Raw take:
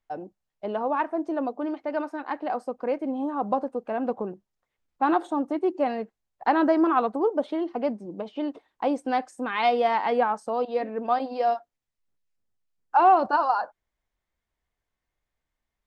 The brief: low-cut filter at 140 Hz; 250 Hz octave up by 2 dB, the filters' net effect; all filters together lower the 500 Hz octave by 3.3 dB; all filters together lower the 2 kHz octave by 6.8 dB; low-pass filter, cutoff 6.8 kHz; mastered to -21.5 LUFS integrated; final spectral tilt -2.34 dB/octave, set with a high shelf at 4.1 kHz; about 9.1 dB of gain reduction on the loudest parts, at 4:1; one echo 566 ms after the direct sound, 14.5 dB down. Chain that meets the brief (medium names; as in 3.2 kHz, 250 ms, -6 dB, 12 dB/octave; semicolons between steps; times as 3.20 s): high-pass 140 Hz; low-pass 6.8 kHz; peaking EQ 250 Hz +5 dB; peaking EQ 500 Hz -5 dB; peaking EQ 2 kHz -8 dB; treble shelf 4.1 kHz -6 dB; compression 4:1, threshold -28 dBFS; delay 566 ms -14.5 dB; trim +11 dB